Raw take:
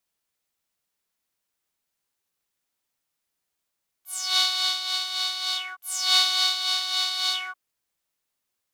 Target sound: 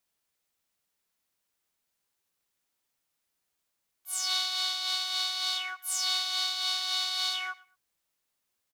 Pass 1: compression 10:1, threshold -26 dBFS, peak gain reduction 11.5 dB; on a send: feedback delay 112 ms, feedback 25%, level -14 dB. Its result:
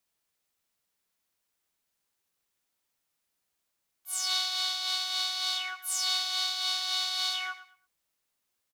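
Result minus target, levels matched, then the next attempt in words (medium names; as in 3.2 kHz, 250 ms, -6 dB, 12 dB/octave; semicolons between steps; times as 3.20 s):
echo-to-direct +7.5 dB
compression 10:1, threshold -26 dBFS, peak gain reduction 11.5 dB; on a send: feedback delay 112 ms, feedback 25%, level -21.5 dB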